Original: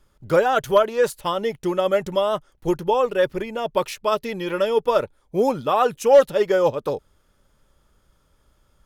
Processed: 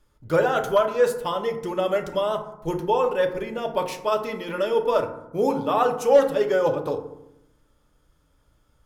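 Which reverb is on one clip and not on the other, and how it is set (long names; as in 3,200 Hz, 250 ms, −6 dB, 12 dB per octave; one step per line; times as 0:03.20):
feedback delay network reverb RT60 0.83 s, low-frequency decay 1.45×, high-frequency decay 0.4×, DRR 4 dB
level −4 dB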